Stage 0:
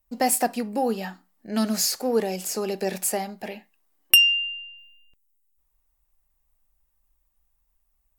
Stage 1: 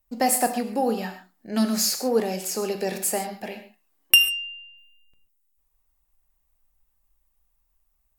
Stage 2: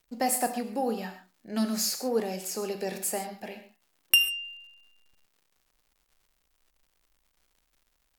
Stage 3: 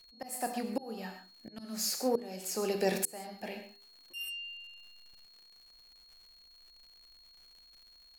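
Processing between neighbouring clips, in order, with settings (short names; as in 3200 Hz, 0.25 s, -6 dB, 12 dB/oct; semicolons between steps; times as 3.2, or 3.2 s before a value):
non-linear reverb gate 0.16 s flat, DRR 7.5 dB
crackle 220/s -49 dBFS; gain -5.5 dB
auto swell 0.731 s; de-hum 80.4 Hz, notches 6; whine 4300 Hz -61 dBFS; gain +4 dB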